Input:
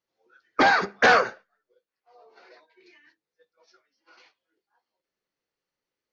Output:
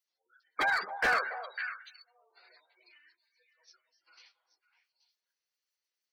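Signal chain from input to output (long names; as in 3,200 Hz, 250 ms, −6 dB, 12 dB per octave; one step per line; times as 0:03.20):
gate on every frequency bin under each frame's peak −20 dB strong
first difference
echo through a band-pass that steps 276 ms, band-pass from 710 Hz, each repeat 1.4 octaves, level −7 dB
slew-rate limiting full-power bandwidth 50 Hz
level +6.5 dB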